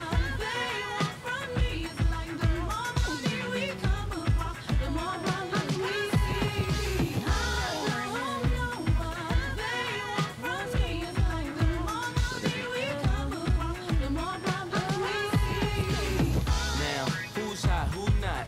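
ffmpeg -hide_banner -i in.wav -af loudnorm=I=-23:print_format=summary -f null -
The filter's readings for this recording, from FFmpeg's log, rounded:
Input Integrated:    -29.8 LUFS
Input True Peak:     -13.6 dBTP
Input LRA:             1.4 LU
Input Threshold:     -39.8 LUFS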